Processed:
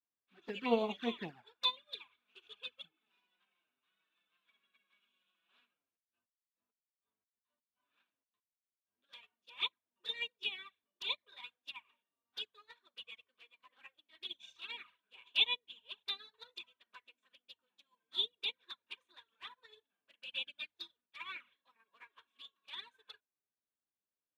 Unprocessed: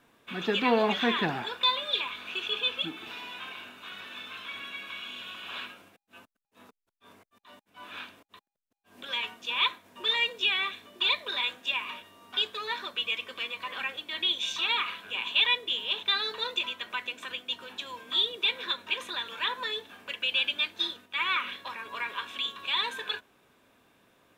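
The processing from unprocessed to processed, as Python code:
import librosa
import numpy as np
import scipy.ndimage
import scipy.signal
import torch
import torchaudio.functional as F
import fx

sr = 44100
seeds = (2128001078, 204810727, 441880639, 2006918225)

y = fx.env_flanger(x, sr, rest_ms=10.3, full_db=-22.5)
y = fx.upward_expand(y, sr, threshold_db=-45.0, expansion=2.5)
y = F.gain(torch.from_numpy(y), -3.0).numpy()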